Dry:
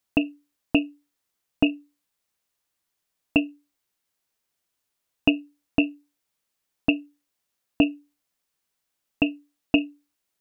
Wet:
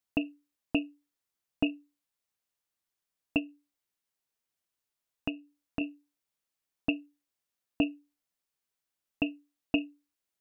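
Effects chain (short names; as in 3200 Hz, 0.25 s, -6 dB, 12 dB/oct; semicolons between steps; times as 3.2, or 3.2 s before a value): 3.38–5.81 compressor 2:1, threshold -27 dBFS, peak gain reduction 7.5 dB; gain -8 dB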